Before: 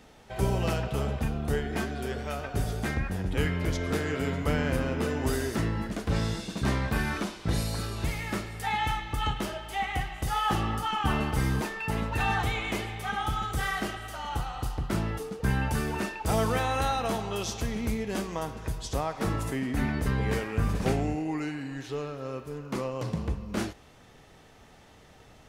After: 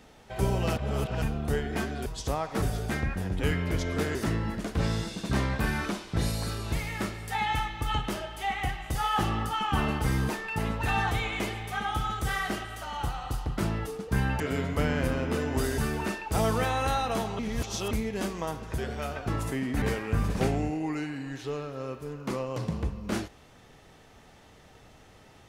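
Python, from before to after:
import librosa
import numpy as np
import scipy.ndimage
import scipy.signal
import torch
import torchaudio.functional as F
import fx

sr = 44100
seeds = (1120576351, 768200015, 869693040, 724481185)

y = fx.edit(x, sr, fx.reverse_span(start_s=0.76, length_s=0.46),
    fx.swap(start_s=2.06, length_s=0.5, other_s=18.72, other_length_s=0.56),
    fx.move(start_s=4.09, length_s=1.38, to_s=15.72),
    fx.reverse_span(start_s=17.33, length_s=0.52),
    fx.cut(start_s=19.82, length_s=0.45), tone=tone)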